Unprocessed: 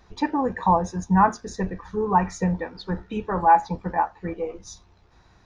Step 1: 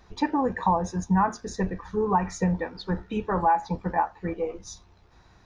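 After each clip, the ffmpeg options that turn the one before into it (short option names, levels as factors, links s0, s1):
-af "acompressor=threshold=0.126:ratio=6"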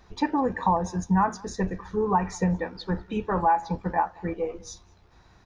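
-filter_complex "[0:a]asplit=2[s0][s1];[s1]adelay=198.3,volume=0.0562,highshelf=f=4000:g=-4.46[s2];[s0][s2]amix=inputs=2:normalize=0"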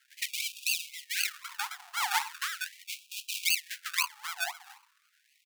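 -af "aecho=1:1:118:0.075,acrusher=samples=34:mix=1:aa=0.000001:lfo=1:lforange=20.4:lforate=3.9,afftfilt=real='re*gte(b*sr/1024,680*pow(2400/680,0.5+0.5*sin(2*PI*0.39*pts/sr)))':imag='im*gte(b*sr/1024,680*pow(2400/680,0.5+0.5*sin(2*PI*0.39*pts/sr)))':win_size=1024:overlap=0.75,volume=1.12"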